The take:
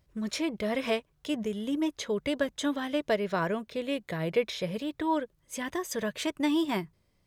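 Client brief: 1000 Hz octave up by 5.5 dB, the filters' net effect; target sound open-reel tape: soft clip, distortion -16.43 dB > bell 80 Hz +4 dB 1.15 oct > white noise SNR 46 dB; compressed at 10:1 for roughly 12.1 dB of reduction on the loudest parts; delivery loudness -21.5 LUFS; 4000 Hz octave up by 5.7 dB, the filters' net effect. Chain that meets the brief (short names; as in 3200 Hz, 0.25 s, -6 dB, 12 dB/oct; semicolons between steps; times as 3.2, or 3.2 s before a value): bell 1000 Hz +6 dB; bell 4000 Hz +7 dB; compressor 10:1, threshold -32 dBFS; soft clip -30 dBFS; bell 80 Hz +4 dB 1.15 oct; white noise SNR 46 dB; gain +17 dB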